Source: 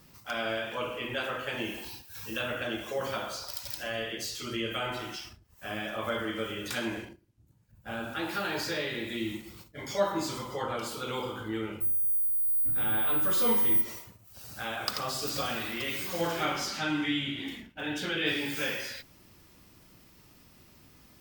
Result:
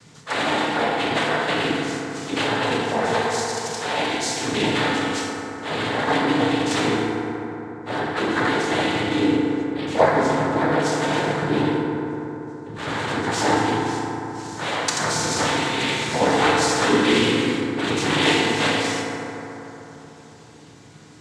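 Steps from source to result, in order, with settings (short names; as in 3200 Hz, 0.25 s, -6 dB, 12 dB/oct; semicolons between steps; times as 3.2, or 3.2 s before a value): 7.99–10.8 LPF 2900 Hz 12 dB/oct; noise vocoder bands 6; FDN reverb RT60 3.7 s, high-frequency decay 0.35×, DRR -1 dB; gain +9 dB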